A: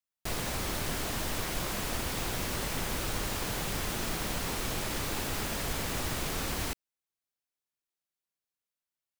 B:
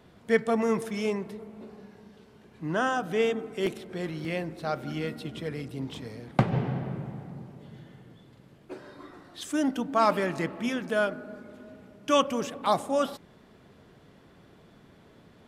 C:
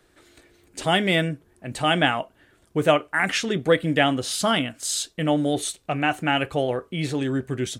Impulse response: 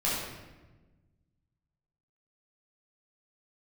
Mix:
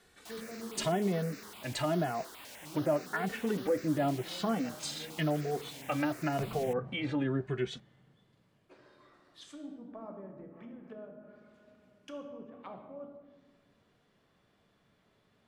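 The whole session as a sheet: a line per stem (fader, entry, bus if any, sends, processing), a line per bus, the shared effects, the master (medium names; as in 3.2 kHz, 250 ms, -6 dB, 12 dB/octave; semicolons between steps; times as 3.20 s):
-12.0 dB, 0.00 s, no send, high-pass 260 Hz 24 dB/octave; treble shelf 6.1 kHz -6 dB; stepped phaser 9.8 Hz 340–3200 Hz
-17.5 dB, 0.00 s, send -10.5 dB, low-pass that closes with the level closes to 440 Hz, closed at -25.5 dBFS
-1.0 dB, 0.00 s, no send, low-pass that closes with the level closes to 630 Hz, closed at -19 dBFS; peak limiter -16.5 dBFS, peak gain reduction 7 dB; endless flanger 2.3 ms +0.91 Hz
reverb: on, RT60 1.2 s, pre-delay 9 ms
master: tilt shelf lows -4 dB, about 780 Hz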